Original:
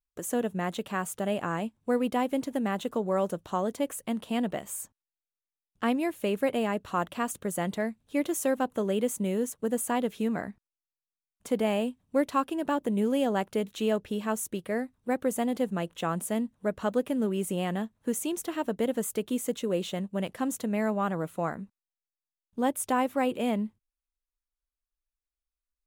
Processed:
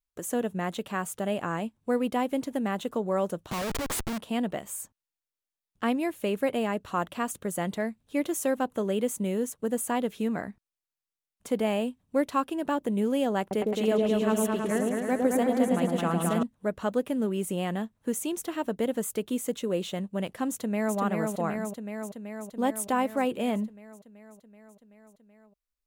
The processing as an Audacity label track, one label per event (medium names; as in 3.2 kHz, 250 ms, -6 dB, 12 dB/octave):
3.510000	4.180000	Schmitt trigger flips at -44 dBFS
13.400000	16.430000	delay with an opening low-pass 108 ms, low-pass from 750 Hz, each repeat up 2 oct, level 0 dB
20.500000	20.970000	echo throw 380 ms, feedback 75%, level -3 dB